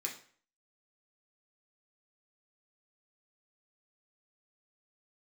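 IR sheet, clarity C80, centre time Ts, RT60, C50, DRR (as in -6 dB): 13.5 dB, 20 ms, 0.50 s, 8.5 dB, -2.0 dB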